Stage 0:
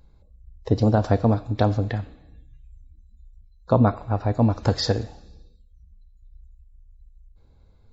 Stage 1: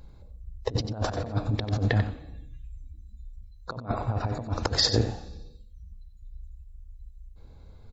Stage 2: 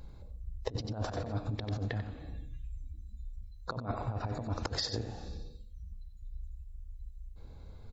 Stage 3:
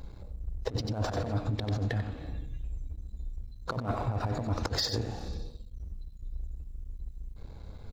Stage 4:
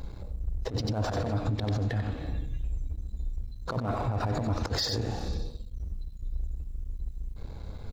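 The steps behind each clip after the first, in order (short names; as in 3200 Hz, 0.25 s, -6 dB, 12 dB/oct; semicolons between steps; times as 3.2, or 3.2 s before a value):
negative-ratio compressor -26 dBFS, ratio -0.5; echo 92 ms -10 dB
compressor 12:1, threshold -31 dBFS, peak gain reduction 14 dB
sample leveller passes 2; gain -2.5 dB
limiter -26.5 dBFS, peak gain reduction 8 dB; gain +5 dB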